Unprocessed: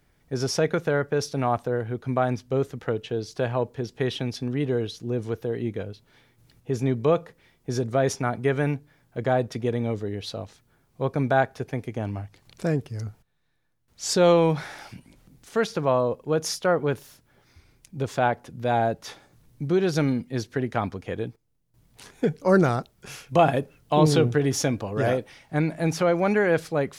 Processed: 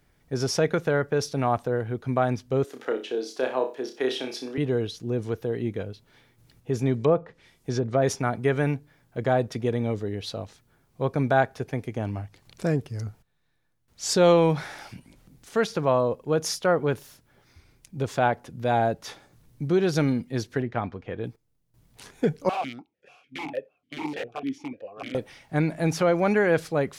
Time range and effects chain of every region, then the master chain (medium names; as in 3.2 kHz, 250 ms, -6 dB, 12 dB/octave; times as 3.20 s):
2.64–4.58 s: Chebyshev high-pass 300 Hz, order 3 + flutter echo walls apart 5.3 m, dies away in 0.31 s
6.94–8.02 s: low-pass that closes with the level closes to 1.1 kHz, closed at -19.5 dBFS + treble shelf 3.8 kHz +9.5 dB
20.62–21.24 s: low-pass 3.1 kHz + feedback comb 120 Hz, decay 0.16 s, mix 40%
22.49–25.15 s: integer overflow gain 14 dB + stepped vowel filter 6.7 Hz
whole clip: none